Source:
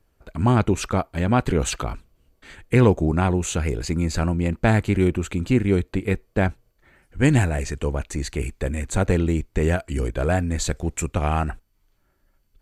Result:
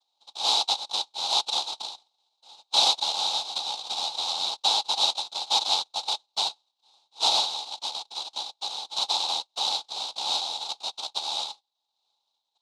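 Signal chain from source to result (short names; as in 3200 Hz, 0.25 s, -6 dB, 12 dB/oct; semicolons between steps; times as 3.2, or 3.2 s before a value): noise vocoder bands 1; double band-pass 1800 Hz, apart 2.2 oct; gain +4 dB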